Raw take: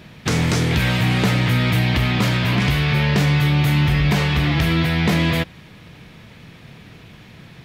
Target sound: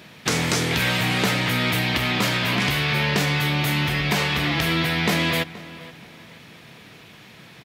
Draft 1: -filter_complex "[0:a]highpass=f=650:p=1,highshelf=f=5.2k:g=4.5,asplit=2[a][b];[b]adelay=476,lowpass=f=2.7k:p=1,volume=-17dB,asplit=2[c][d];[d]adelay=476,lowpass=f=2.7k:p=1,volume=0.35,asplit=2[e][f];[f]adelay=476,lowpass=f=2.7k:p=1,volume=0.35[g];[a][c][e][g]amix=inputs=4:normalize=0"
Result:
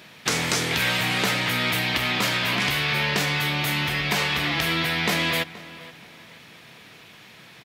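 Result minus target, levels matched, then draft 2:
250 Hz band -4.0 dB
-filter_complex "[0:a]highpass=f=310:p=1,highshelf=f=5.2k:g=4.5,asplit=2[a][b];[b]adelay=476,lowpass=f=2.7k:p=1,volume=-17dB,asplit=2[c][d];[d]adelay=476,lowpass=f=2.7k:p=1,volume=0.35,asplit=2[e][f];[f]adelay=476,lowpass=f=2.7k:p=1,volume=0.35[g];[a][c][e][g]amix=inputs=4:normalize=0"

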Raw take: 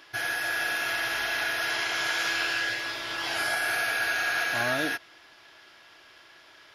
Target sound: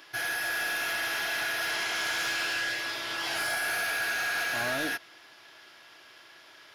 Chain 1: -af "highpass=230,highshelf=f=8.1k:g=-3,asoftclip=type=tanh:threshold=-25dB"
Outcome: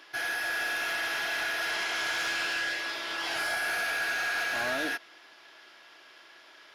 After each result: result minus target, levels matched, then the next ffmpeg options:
125 Hz band -5.5 dB; 8000 Hz band -3.0 dB
-af "highpass=100,highshelf=f=8.1k:g=-3,asoftclip=type=tanh:threshold=-25dB"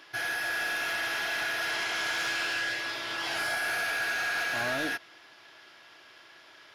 8000 Hz band -3.0 dB
-af "highpass=100,highshelf=f=8.1k:g=5.5,asoftclip=type=tanh:threshold=-25dB"

